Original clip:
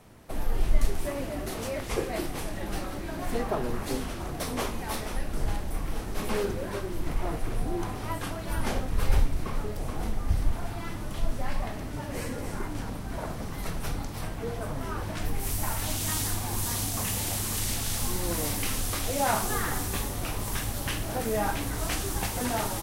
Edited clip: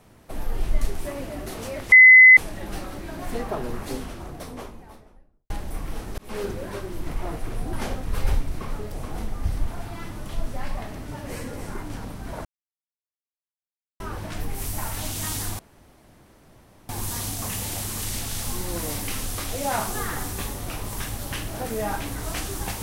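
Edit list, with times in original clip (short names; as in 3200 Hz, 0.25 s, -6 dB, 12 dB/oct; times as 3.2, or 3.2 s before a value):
1.92–2.37 bleep 2030 Hz -6 dBFS
3.73–5.5 studio fade out
6.18–6.45 fade in
7.73–8.58 cut
13.3–14.85 mute
16.44 insert room tone 1.30 s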